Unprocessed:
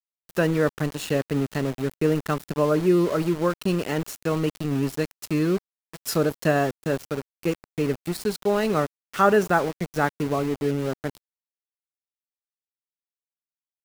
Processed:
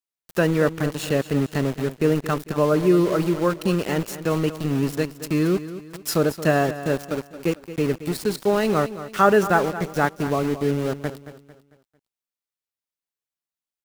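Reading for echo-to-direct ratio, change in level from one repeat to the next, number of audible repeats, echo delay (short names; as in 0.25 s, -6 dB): -13.0 dB, -8.0 dB, 3, 0.224 s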